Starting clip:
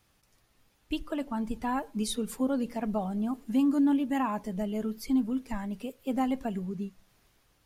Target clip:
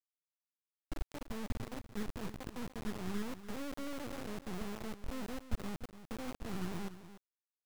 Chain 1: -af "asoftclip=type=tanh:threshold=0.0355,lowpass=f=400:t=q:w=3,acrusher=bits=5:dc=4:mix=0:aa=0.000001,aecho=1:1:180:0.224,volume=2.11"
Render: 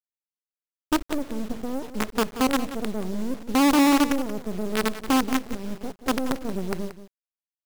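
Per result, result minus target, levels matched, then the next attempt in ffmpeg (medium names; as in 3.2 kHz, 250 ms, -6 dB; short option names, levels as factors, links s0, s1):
125 Hz band -11.5 dB; echo 112 ms early
-af "asoftclip=type=tanh:threshold=0.0355,lowpass=f=110:t=q:w=3,acrusher=bits=5:dc=4:mix=0:aa=0.000001,aecho=1:1:180:0.224,volume=2.11"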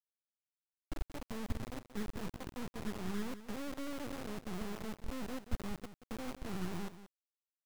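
echo 112 ms early
-af "asoftclip=type=tanh:threshold=0.0355,lowpass=f=110:t=q:w=3,acrusher=bits=5:dc=4:mix=0:aa=0.000001,aecho=1:1:292:0.224,volume=2.11"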